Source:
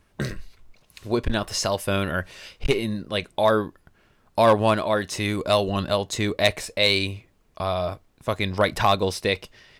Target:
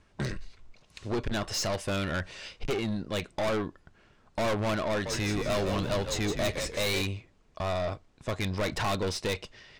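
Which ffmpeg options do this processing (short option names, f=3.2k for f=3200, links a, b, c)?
-filter_complex "[0:a]lowpass=f=8.1k:w=0.5412,lowpass=f=8.1k:w=1.3066,aeval=exprs='(tanh(20*val(0)+0.3)-tanh(0.3))/20':c=same,asettb=1/sr,asplit=3[a][b][c];[a]atrim=end=4.894[d];[b]atrim=start=4.89:end=7.02,asetpts=PTS-STARTPTS,afade=t=in:d=0.004:c=qsin,afade=t=out:st=2.126:d=0.004:c=qsin,asplit=6[e][f][g][h][i][j];[f]adelay=164,afreqshift=-74,volume=-6.5dB[k];[g]adelay=328,afreqshift=-148,volume=-14.5dB[l];[h]adelay=492,afreqshift=-222,volume=-22.4dB[m];[i]adelay=656,afreqshift=-296,volume=-30.4dB[n];[j]adelay=820,afreqshift=-370,volume=-38.3dB[o];[e][k][l][m][n][o]amix=inputs=6:normalize=0,atrim=end_sample=93933[p];[c]atrim=start=7.016[q];[d][p]acrossfade=d=0.004:c1=hsin:c2=qsin[r];[r][q]acrossfade=d=0.004:c1=qsin:c2=hsin"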